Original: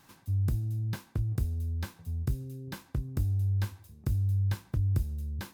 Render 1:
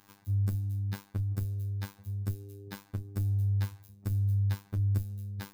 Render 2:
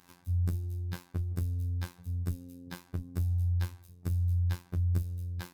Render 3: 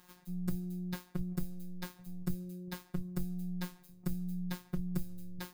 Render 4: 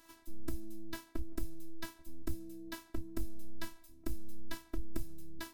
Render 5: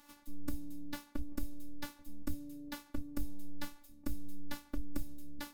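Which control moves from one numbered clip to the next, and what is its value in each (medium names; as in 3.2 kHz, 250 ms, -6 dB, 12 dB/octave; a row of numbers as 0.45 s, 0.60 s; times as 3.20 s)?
robot voice, frequency: 100 Hz, 88 Hz, 180 Hz, 330 Hz, 290 Hz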